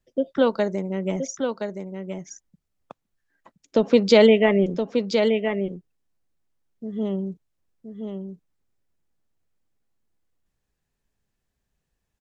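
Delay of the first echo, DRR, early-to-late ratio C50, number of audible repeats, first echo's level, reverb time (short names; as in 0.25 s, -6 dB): 1.021 s, none, none, 1, -6.5 dB, none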